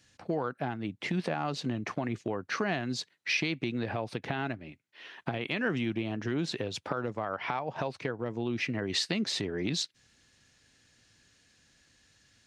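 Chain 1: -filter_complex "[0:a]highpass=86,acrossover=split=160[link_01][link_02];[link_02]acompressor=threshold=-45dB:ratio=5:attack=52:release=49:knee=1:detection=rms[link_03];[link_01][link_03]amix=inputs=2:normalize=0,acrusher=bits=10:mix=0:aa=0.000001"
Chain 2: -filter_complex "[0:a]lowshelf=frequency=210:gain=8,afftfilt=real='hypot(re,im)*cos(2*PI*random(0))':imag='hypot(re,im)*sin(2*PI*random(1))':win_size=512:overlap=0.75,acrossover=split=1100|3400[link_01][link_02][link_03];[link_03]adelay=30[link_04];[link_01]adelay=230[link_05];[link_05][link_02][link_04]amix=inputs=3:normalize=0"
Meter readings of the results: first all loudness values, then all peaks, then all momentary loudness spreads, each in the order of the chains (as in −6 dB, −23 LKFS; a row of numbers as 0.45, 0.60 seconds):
−40.5, −37.5 LKFS; −24.5, −20.0 dBFS; 4, 5 LU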